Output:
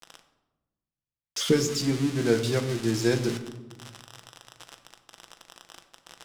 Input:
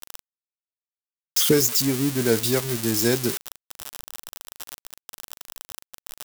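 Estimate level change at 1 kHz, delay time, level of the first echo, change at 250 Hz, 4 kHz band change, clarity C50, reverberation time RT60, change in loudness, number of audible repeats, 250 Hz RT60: -3.0 dB, none, none, -2.0 dB, -5.5 dB, 10.5 dB, 1.1 s, -5.0 dB, none, 1.8 s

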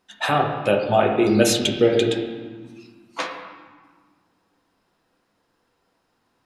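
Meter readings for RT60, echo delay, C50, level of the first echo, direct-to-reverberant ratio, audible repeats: 1.6 s, none, 4.5 dB, none, 1.0 dB, none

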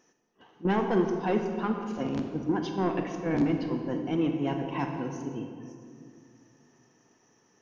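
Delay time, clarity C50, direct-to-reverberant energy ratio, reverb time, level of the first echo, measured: none, 5.0 dB, 4.0 dB, 2.4 s, none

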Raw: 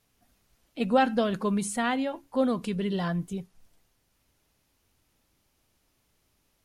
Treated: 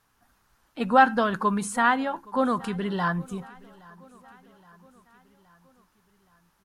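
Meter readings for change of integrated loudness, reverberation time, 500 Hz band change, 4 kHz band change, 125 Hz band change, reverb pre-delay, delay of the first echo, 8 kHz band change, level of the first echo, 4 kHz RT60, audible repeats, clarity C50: +3.5 dB, none, 0.0 dB, 0.0 dB, 0.0 dB, none, 0.82 s, 0.0 dB, -24.0 dB, none, 3, none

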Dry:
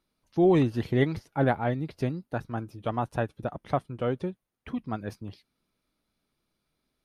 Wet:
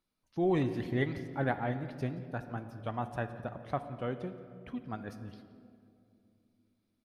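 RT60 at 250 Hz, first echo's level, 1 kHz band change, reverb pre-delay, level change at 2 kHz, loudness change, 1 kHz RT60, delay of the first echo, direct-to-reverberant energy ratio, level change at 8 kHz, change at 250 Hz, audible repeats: 3.7 s, -20.0 dB, -6.0 dB, 3 ms, -3.5 dB, -7.0 dB, 2.1 s, 0.174 s, 9.0 dB, n/a, -7.0 dB, 1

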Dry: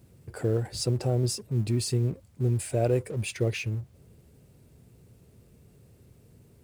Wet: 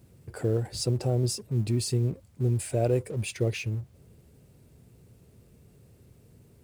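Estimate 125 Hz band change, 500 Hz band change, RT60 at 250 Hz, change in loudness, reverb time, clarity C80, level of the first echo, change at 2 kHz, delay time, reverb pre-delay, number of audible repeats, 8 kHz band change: 0.0 dB, -0.5 dB, none, 0.0 dB, none, none, none, -1.5 dB, none, none, none, 0.0 dB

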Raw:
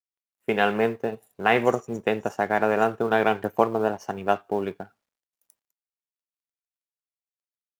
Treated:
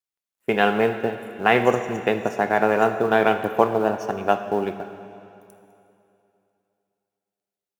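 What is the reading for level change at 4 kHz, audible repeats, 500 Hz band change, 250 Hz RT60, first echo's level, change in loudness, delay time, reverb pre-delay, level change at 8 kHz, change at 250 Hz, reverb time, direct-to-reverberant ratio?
+3.0 dB, none, +3.0 dB, 2.8 s, none, +3.0 dB, none, 23 ms, n/a, +3.0 dB, 2.8 s, 8.5 dB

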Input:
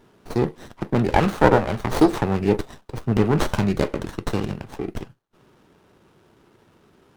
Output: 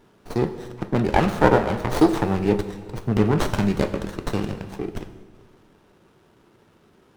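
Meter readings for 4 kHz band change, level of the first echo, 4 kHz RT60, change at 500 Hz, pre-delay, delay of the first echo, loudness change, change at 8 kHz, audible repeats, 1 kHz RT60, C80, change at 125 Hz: -0.5 dB, none, 1.6 s, -0.5 dB, 4 ms, none, -0.5 dB, -0.5 dB, none, 1.7 s, 12.5 dB, -0.5 dB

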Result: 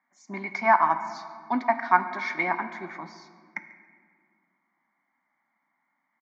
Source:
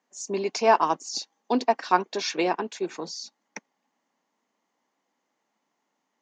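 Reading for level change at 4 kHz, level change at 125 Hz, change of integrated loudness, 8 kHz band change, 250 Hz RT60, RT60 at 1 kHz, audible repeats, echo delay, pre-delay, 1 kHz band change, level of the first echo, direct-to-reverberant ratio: -15.0 dB, -1.0 dB, +0.5 dB, under -15 dB, 2.6 s, 1.8 s, 1, 0.142 s, 3 ms, +1.5 dB, -20.5 dB, 9.0 dB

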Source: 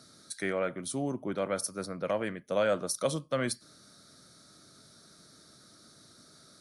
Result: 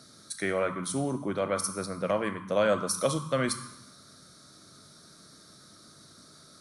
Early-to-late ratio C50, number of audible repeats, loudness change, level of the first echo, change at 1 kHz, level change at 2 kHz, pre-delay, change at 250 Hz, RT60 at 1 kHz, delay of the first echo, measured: 8.5 dB, none, +3.0 dB, none, +4.5 dB, +3.0 dB, 7 ms, +3.0 dB, 0.90 s, none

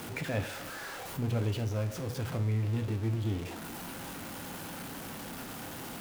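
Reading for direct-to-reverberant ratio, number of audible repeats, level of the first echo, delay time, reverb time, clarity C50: 8.0 dB, none, none, none, 0.50 s, 14.5 dB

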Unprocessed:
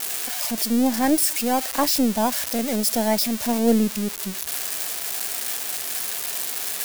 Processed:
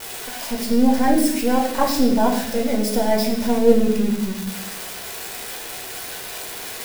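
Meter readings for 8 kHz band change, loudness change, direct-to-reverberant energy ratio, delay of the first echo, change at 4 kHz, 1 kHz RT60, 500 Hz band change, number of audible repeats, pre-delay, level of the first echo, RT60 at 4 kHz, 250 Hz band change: -5.5 dB, +1.0 dB, -0.5 dB, none, -2.0 dB, 0.65 s, +6.0 dB, none, 8 ms, none, 0.85 s, +3.0 dB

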